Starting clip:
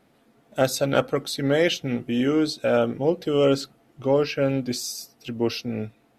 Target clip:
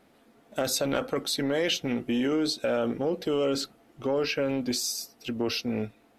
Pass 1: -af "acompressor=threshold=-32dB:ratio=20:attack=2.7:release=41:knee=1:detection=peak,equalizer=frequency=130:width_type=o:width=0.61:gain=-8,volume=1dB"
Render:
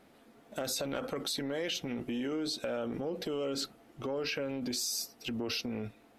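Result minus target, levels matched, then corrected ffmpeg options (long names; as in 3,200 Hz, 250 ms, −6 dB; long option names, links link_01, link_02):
downward compressor: peak gain reduction +8.5 dB
-af "acompressor=threshold=-23dB:ratio=20:attack=2.7:release=41:knee=1:detection=peak,equalizer=frequency=130:width_type=o:width=0.61:gain=-8,volume=1dB"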